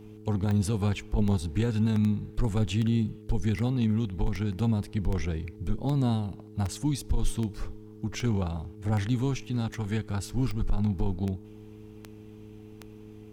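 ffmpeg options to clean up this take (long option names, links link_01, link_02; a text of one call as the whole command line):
ffmpeg -i in.wav -af "adeclick=threshold=4,bandreject=frequency=106.8:width_type=h:width=4,bandreject=frequency=213.6:width_type=h:width=4,bandreject=frequency=320.4:width_type=h:width=4,bandreject=frequency=427.2:width_type=h:width=4" out.wav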